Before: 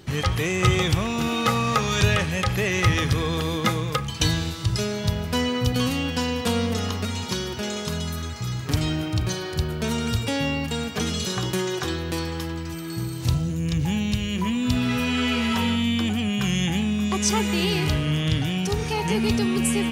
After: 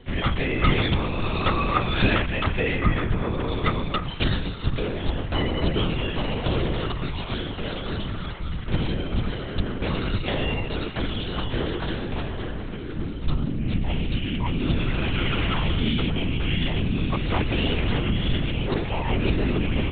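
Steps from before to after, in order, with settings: 2.76–3.48 air absorption 430 m; LPC vocoder at 8 kHz whisper

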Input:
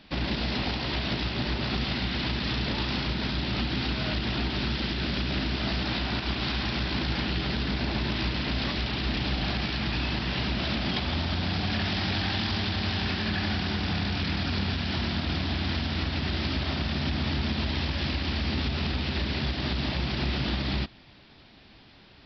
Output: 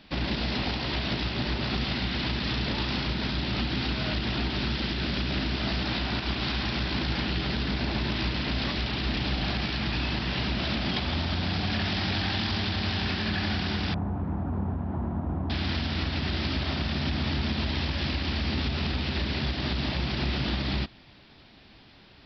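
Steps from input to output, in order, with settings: 13.94–15.5 Chebyshev low-pass 1000 Hz, order 3

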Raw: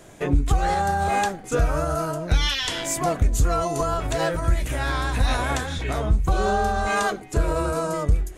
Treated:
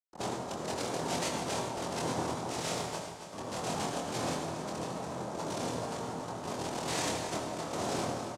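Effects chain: ending faded out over 2.13 s; recorder AGC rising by 74 dB/s; 2.78–3.32 Chebyshev band-pass 2200–5100 Hz, order 2; compressor 3:1, threshold -26 dBFS, peak gain reduction 9.5 dB; rotary speaker horn 7 Hz, later 0.85 Hz, at 3.87; Schmitt trigger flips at -30 dBFS; noise vocoder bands 2; doubler 24 ms -4.5 dB; feedback echo 0.276 s, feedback 49%, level -10 dB; on a send at -4 dB: reverb RT60 1.0 s, pre-delay 58 ms; on the sum: gain -5.5 dB

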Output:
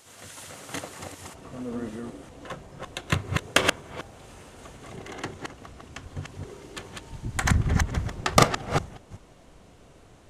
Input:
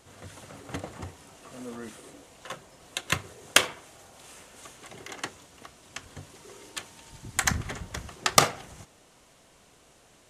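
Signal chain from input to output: reverse delay 0.191 s, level -2 dB; tilt +2 dB/oct, from 1.33 s -2.5 dB/oct; gain +1 dB

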